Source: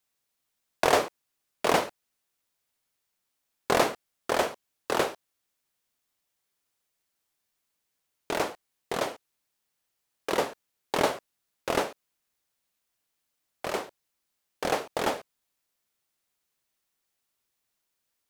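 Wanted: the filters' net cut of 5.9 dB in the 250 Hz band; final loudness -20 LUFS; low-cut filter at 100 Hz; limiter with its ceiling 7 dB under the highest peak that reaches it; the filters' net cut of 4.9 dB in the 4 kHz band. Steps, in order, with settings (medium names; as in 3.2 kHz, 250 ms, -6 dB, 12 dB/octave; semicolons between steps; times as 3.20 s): high-pass 100 Hz; peaking EQ 250 Hz -8.5 dB; peaking EQ 4 kHz -6.5 dB; trim +13 dB; peak limiter -2.5 dBFS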